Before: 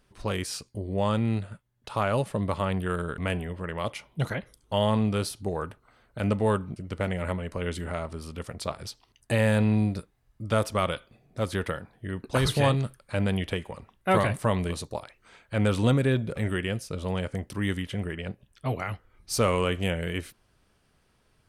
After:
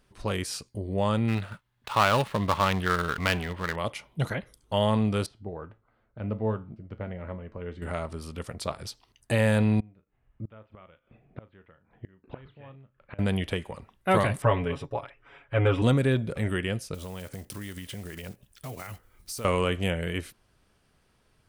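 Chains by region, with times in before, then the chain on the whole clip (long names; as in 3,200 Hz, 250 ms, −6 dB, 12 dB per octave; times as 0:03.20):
0:01.28–0:03.76: gap after every zero crossing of 0.11 ms + flat-topped bell 1,900 Hz +8 dB 2.7 octaves
0:05.26–0:07.82: head-to-tape spacing loss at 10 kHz 35 dB + tuned comb filter 110 Hz, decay 0.29 s
0:09.80–0:13.19: Butterworth low-pass 3,000 Hz + double-tracking delay 37 ms −12.5 dB + gate with flip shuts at −26 dBFS, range −26 dB
0:14.42–0:15.82: Savitzky-Golay smoothing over 25 samples + parametric band 200 Hz −14.5 dB 0.24 octaves + comb filter 7.2 ms, depth 95%
0:16.94–0:19.45: one scale factor per block 5 bits + high-shelf EQ 6,200 Hz +11 dB + downward compressor 5 to 1, threshold −35 dBFS
whole clip: no processing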